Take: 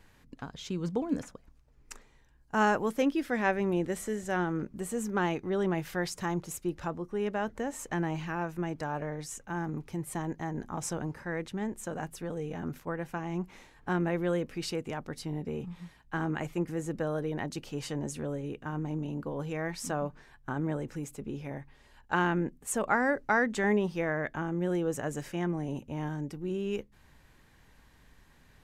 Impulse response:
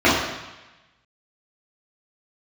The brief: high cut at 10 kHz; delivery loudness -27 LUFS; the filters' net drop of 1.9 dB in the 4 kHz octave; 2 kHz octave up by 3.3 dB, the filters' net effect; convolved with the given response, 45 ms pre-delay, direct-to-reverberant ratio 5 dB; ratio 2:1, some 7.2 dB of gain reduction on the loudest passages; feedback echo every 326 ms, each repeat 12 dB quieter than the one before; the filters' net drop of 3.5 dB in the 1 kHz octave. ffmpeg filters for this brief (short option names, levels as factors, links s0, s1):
-filter_complex "[0:a]lowpass=10000,equalizer=f=1000:t=o:g=-6.5,equalizer=f=2000:t=o:g=8,equalizer=f=4000:t=o:g=-6,acompressor=threshold=0.0178:ratio=2,aecho=1:1:326|652|978:0.251|0.0628|0.0157,asplit=2[s0][s1];[1:a]atrim=start_sample=2205,adelay=45[s2];[s1][s2]afir=irnorm=-1:irlink=0,volume=0.0316[s3];[s0][s3]amix=inputs=2:normalize=0,volume=2.66"